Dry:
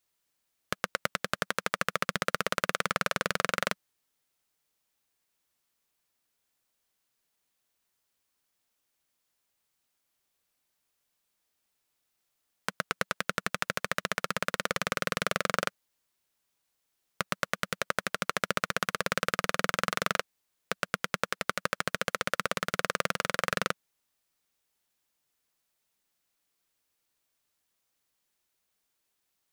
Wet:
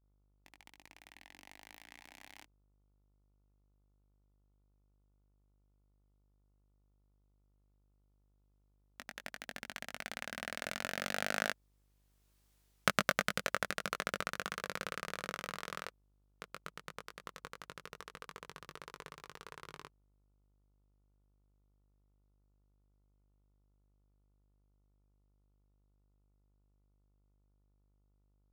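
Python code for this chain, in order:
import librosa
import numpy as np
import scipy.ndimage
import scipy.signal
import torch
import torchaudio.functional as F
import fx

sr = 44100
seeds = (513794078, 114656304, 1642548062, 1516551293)

p1 = fx.speed_glide(x, sr, from_pct=154, to_pct=53)
p2 = fx.doppler_pass(p1, sr, speed_mps=8, closest_m=2.5, pass_at_s=12.54)
p3 = np.where(np.abs(p2) >= 10.0 ** (-38.0 / 20.0), p2, 0.0)
p4 = p2 + (p3 * 10.0 ** (-8.5 / 20.0))
p5 = fx.dmg_buzz(p4, sr, base_hz=50.0, harmonics=29, level_db=-80.0, tilt_db=-8, odd_only=False)
p6 = fx.doubler(p5, sr, ms=20.0, db=-6.0)
y = p6 * 10.0 ** (3.0 / 20.0)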